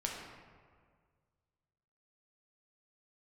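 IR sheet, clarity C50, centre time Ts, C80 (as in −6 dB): 1.5 dB, 72 ms, 3.5 dB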